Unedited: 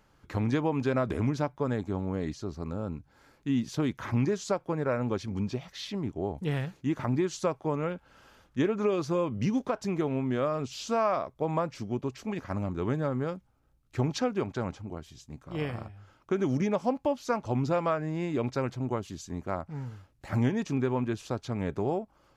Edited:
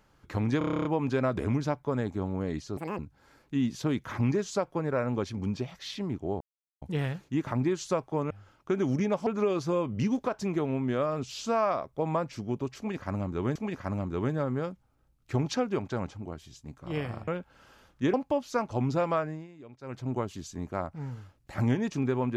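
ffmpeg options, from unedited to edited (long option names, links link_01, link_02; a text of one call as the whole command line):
ffmpeg -i in.wav -filter_complex "[0:a]asplit=20[link_01][link_02][link_03][link_04][link_05][link_06][link_07][link_08][link_09][link_10][link_11][link_12][link_13][link_14][link_15][link_16][link_17][link_18][link_19][link_20];[link_01]atrim=end=0.612[link_21];[link_02]atrim=start=0.578:end=0.612[link_22];[link_03]atrim=start=0.578:end=0.612[link_23];[link_04]atrim=start=0.578:end=0.612[link_24];[link_05]atrim=start=0.578:end=0.612[link_25];[link_06]atrim=start=0.578:end=0.612[link_26];[link_07]atrim=start=0.578:end=0.612[link_27];[link_08]atrim=start=0.578:end=0.612[link_28];[link_09]atrim=start=0.578:end=0.612[link_29];[link_10]atrim=start=0.578:end=2.504[link_30];[link_11]atrim=start=2.5:end=2.92,asetpts=PTS-STARTPTS,asetrate=85995,aresample=44100,atrim=end_sample=9498,asetpts=PTS-STARTPTS[link_31];[link_12]atrim=start=2.916:end=6.34,asetpts=PTS-STARTPTS,afade=type=out:start_time=3.42:duration=0.004:curve=hsin,apad=pad_dur=0.41[link_32];[link_13]atrim=start=6.34:end=7.832,asetpts=PTS-STARTPTS,afade=type=in:duration=0.004:curve=hsin[link_33];[link_14]atrim=start=15.918:end=16.882[link_34];[link_15]atrim=start=8.688:end=12.982[link_35];[link_16]atrim=start=12.198:end=15.922[link_36];[link_17]atrim=start=7.828:end=8.692[link_37];[link_18]atrim=start=16.878:end=18.22,asetpts=PTS-STARTPTS,afade=type=out:start_time=1.082:duration=0.26:silence=0.112202[link_38];[link_19]atrim=start=18.22:end=18.56,asetpts=PTS-STARTPTS,volume=-19dB[link_39];[link_20]atrim=start=18.56,asetpts=PTS-STARTPTS,afade=type=in:duration=0.26:silence=0.112202[link_40];[link_21][link_22]acrossfade=duration=0.004:curve1=hsin:curve2=hsin[link_41];[link_41][link_23]acrossfade=duration=0.004:curve1=hsin:curve2=hsin[link_42];[link_42][link_24]acrossfade=duration=0.004:curve1=hsin:curve2=hsin[link_43];[link_43][link_25]acrossfade=duration=0.004:curve1=hsin:curve2=hsin[link_44];[link_44][link_26]acrossfade=duration=0.004:curve1=hsin:curve2=hsin[link_45];[link_45][link_27]acrossfade=duration=0.004:curve1=hsin:curve2=hsin[link_46];[link_46][link_28]acrossfade=duration=0.004:curve1=hsin:curve2=hsin[link_47];[link_47][link_29]acrossfade=duration=0.004:curve1=hsin:curve2=hsin[link_48];[link_48][link_30]acrossfade=duration=0.004:curve1=hsin:curve2=hsin[link_49];[link_49][link_31]acrossfade=duration=0.004:curve1=hsin:curve2=hsin[link_50];[link_32][link_33]concat=n=2:v=0:a=1[link_51];[link_50][link_51]acrossfade=duration=0.004:curve1=hsin:curve2=hsin[link_52];[link_52][link_34]acrossfade=duration=0.004:curve1=hsin:curve2=hsin[link_53];[link_53][link_35]acrossfade=duration=0.004:curve1=hsin:curve2=hsin[link_54];[link_54][link_36]acrossfade=duration=0.004:curve1=hsin:curve2=hsin[link_55];[link_55][link_37]acrossfade=duration=0.004:curve1=hsin:curve2=hsin[link_56];[link_38][link_39][link_40]concat=n=3:v=0:a=1[link_57];[link_56][link_57]acrossfade=duration=0.004:curve1=hsin:curve2=hsin" out.wav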